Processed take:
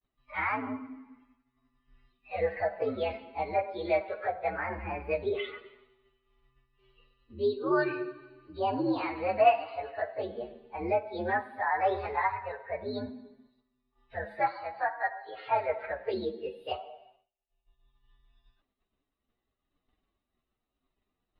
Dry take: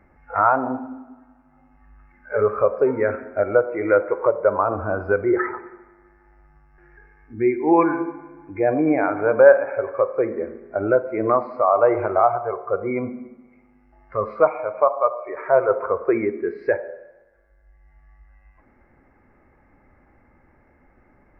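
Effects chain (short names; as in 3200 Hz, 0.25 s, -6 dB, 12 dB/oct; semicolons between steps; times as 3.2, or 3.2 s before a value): inharmonic rescaling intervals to 128%; expander -50 dBFS; gain -8.5 dB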